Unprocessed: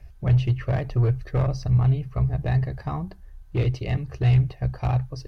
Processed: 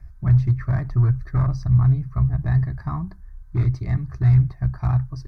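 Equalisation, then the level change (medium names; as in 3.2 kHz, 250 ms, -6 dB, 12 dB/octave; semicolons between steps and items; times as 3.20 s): peaking EQ 790 Hz -7.5 dB 0.26 oct; treble shelf 4.2 kHz -9.5 dB; static phaser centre 1.2 kHz, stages 4; +4.0 dB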